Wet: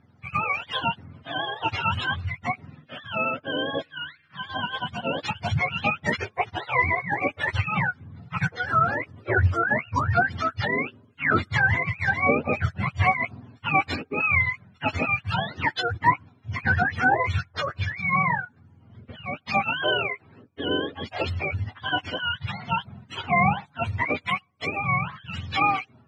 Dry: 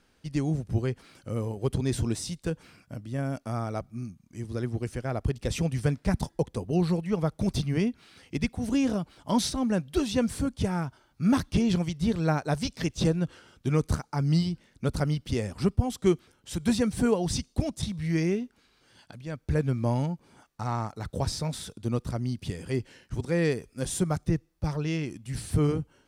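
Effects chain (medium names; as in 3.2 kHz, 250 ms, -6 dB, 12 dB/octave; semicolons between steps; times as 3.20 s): spectrum inverted on a logarithmic axis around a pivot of 600 Hz; low-pass 2.9 kHz 12 dB/octave; trim +7 dB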